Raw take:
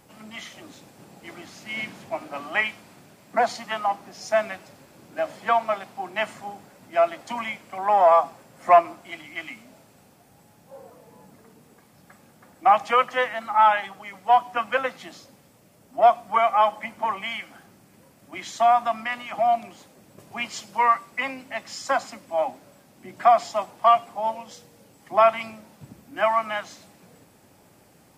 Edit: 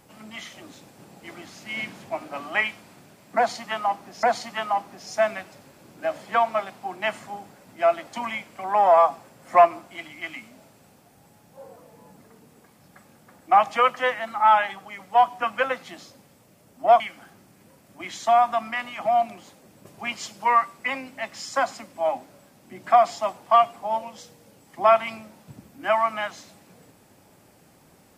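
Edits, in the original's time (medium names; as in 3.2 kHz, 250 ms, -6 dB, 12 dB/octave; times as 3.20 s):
3.37–4.23 s: loop, 2 plays
16.14–17.33 s: delete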